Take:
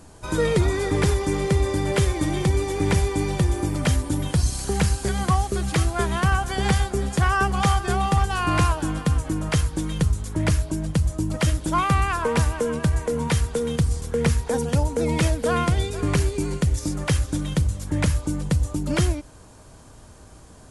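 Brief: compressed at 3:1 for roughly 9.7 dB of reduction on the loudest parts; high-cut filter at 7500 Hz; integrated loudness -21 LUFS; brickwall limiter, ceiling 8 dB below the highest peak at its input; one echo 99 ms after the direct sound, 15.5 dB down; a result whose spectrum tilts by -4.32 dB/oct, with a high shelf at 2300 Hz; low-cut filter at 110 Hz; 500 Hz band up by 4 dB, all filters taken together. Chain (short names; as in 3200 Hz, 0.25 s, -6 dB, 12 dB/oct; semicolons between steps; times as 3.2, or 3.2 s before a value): HPF 110 Hz; LPF 7500 Hz; bell 500 Hz +4.5 dB; high shelf 2300 Hz +8 dB; compressor 3:1, threshold -29 dBFS; limiter -21 dBFS; echo 99 ms -15.5 dB; gain +10.5 dB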